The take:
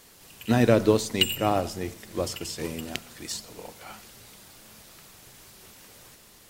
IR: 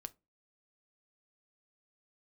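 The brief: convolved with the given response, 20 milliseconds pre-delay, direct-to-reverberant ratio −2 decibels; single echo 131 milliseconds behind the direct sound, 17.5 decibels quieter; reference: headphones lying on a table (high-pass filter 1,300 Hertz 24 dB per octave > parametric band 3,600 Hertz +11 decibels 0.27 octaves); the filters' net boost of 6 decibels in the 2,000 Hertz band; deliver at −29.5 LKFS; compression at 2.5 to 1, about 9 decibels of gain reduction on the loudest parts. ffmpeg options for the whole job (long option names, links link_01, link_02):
-filter_complex "[0:a]equalizer=frequency=2000:width_type=o:gain=7.5,acompressor=threshold=-27dB:ratio=2.5,aecho=1:1:131:0.133,asplit=2[link_01][link_02];[1:a]atrim=start_sample=2205,adelay=20[link_03];[link_02][link_03]afir=irnorm=-1:irlink=0,volume=6.5dB[link_04];[link_01][link_04]amix=inputs=2:normalize=0,highpass=frequency=1300:width=0.5412,highpass=frequency=1300:width=1.3066,equalizer=frequency=3600:width_type=o:width=0.27:gain=11,volume=1dB"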